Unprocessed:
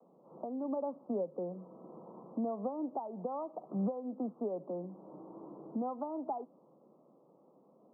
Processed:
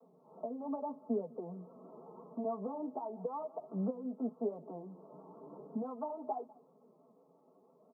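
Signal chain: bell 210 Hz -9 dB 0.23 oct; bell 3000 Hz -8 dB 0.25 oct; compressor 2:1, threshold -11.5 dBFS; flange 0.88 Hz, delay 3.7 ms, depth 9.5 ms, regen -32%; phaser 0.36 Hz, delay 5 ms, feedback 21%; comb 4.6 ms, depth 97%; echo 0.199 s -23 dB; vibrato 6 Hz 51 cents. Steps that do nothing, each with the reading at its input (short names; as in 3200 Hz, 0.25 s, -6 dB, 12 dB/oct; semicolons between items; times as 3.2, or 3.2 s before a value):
bell 3000 Hz: input band ends at 1300 Hz; compressor, threshold -11.5 dBFS: input peak -25.5 dBFS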